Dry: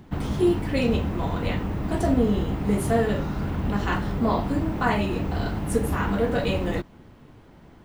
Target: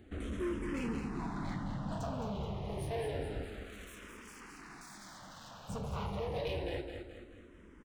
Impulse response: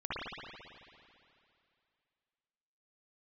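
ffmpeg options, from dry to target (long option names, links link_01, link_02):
-filter_complex "[0:a]aresample=22050,aresample=44100,asoftclip=type=hard:threshold=-24.5dB,acompressor=threshold=-30dB:ratio=2,asettb=1/sr,asplit=3[link_01][link_02][link_03];[link_01]atrim=end=3.434[link_04];[link_02]atrim=start=3.43:end=5.69,asetpts=PTS-STARTPTS,afade=type=in:duration=0.004:curve=qsin,afade=type=out:start_time=2.256:duration=0.004:curve=qsin,aeval=exprs='0.0119*(abs(mod(val(0)/0.0119+3,4)-2)-1)':channel_layout=same[link_05];[link_03]atrim=start=5.686[link_06];[link_04][link_05]acrossfade=duration=0.004:curve1=hsin:curve2=qsin[link_07];[link_07][link_06]acrossfade=duration=0.004:curve1=qsin:curve2=hsin,aecho=1:1:214|428|642|856|1070:0.447|0.205|0.0945|0.0435|0.02,asplit=2[link_08][link_09];[link_09]afreqshift=-0.28[link_10];[link_08][link_10]amix=inputs=2:normalize=1,volume=-5.5dB"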